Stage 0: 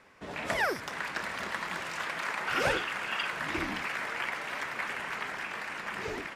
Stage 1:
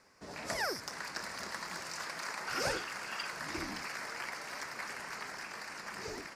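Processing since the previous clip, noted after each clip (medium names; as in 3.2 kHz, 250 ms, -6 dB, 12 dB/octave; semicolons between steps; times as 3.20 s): resonant high shelf 4 kHz +6 dB, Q 3; trim -6 dB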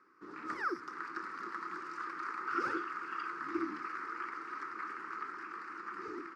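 two resonant band-passes 650 Hz, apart 1.9 oct; trim +9.5 dB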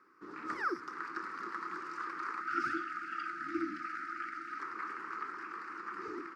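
time-frequency box 2.41–4.59 s, 350–1200 Hz -26 dB; trim +1 dB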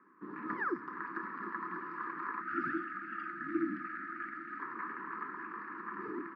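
high-pass 110 Hz; distance through air 440 m; small resonant body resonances 200/1000/1700 Hz, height 13 dB, ringing for 25 ms; trim -2 dB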